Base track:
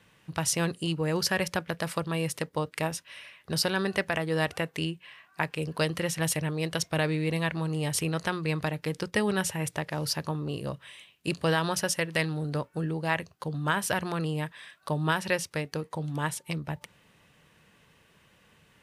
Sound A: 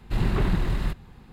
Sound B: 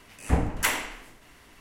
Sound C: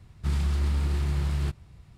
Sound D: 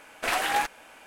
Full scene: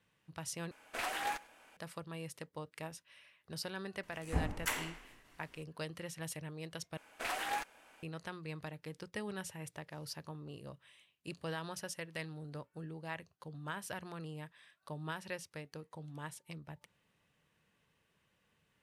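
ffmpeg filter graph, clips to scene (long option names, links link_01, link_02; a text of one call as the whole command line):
ffmpeg -i bed.wav -i cue0.wav -i cue1.wav -i cue2.wav -i cue3.wav -filter_complex "[4:a]asplit=2[link_01][link_02];[0:a]volume=-15dB[link_03];[link_01]aecho=1:1:100:0.075[link_04];[link_03]asplit=3[link_05][link_06][link_07];[link_05]atrim=end=0.714[link_08];[link_04]atrim=end=1.06,asetpts=PTS-STARTPTS,volume=-11.5dB[link_09];[link_06]atrim=start=1.766:end=6.974[link_10];[link_02]atrim=end=1.06,asetpts=PTS-STARTPTS,volume=-11.5dB[link_11];[link_07]atrim=start=8.026[link_12];[2:a]atrim=end=1.6,asetpts=PTS-STARTPTS,volume=-11dB,afade=type=in:duration=0.004:curve=hsin,afade=type=out:start_time=1.596:duration=0.004:curve=hsin,adelay=4030[link_13];[link_08][link_09]acrossfade=duration=0.004:curve1=hsin:curve2=hsin[link_14];[link_14][link_10]acrossfade=duration=0.004:curve1=hsin:curve2=hsin[link_15];[link_15][link_11]acrossfade=duration=0.004:curve1=hsin:curve2=hsin[link_16];[link_16][link_12]acrossfade=duration=0.004:curve1=hsin:curve2=hsin[link_17];[link_17][link_13]amix=inputs=2:normalize=0" out.wav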